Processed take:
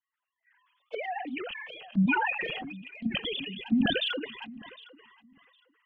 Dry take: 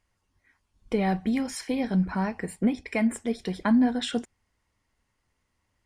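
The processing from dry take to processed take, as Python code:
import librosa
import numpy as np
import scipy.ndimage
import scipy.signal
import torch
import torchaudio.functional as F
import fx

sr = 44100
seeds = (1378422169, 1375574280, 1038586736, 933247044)

p1 = fx.sine_speech(x, sr)
p2 = fx.peak_eq(p1, sr, hz=370.0, db=-9.5, octaves=1.8)
p3 = fx.notch(p2, sr, hz=2300.0, q=20.0)
p4 = fx.level_steps(p3, sr, step_db=23)
p5 = p3 + (p4 * 10.0 ** (-2.5 / 20.0))
p6 = fx.spec_box(p5, sr, start_s=1.48, length_s=2.61, low_hz=230.0, high_hz=2400.0, gain_db=-19)
p7 = fx.env_flanger(p6, sr, rest_ms=9.0, full_db=-25.5)
p8 = fx.echo_feedback(p7, sr, ms=759, feedback_pct=23, wet_db=-22.5)
p9 = fx.sustainer(p8, sr, db_per_s=27.0)
y = p9 * 10.0 ** (2.0 / 20.0)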